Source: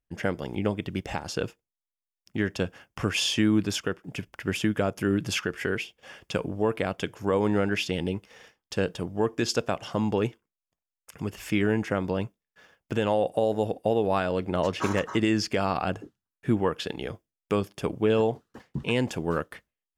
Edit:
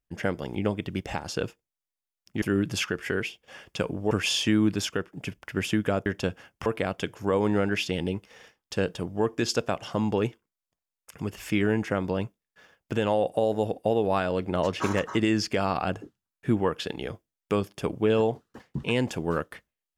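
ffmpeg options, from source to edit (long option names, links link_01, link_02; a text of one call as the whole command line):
ffmpeg -i in.wav -filter_complex "[0:a]asplit=5[link_01][link_02][link_03][link_04][link_05];[link_01]atrim=end=2.422[link_06];[link_02]atrim=start=4.968:end=6.662[link_07];[link_03]atrim=start=3.018:end=4.972[link_08];[link_04]atrim=start=2.418:end=3.022[link_09];[link_05]atrim=start=6.658[link_10];[link_06][link_07]acrossfade=duration=0.004:curve1=hsin:curve2=hsin[link_11];[link_11][link_08]acrossfade=duration=0.004:curve1=hsin:curve2=hsin[link_12];[link_12][link_09]acrossfade=duration=0.004:curve1=hsin:curve2=hsin[link_13];[link_13][link_10]acrossfade=duration=0.004:curve1=hsin:curve2=hsin" out.wav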